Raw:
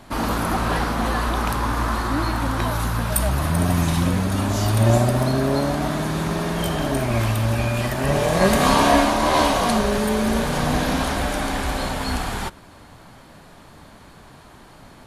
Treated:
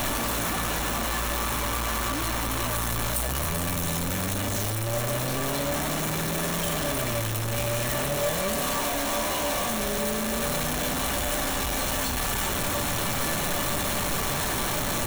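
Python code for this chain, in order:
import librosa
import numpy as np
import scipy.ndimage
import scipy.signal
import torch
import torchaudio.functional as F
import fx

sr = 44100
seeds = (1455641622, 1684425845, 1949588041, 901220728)

y = np.sign(x) * np.sqrt(np.mean(np.square(x)))
y = fx.high_shelf(y, sr, hz=6400.0, db=5.5)
y = fx.notch(y, sr, hz=4800.0, q=7.4)
y = fx.comb_fb(y, sr, f0_hz=580.0, decay_s=0.18, harmonics='all', damping=0.0, mix_pct=70)
y = F.gain(torch.from_numpy(y), 2.0).numpy()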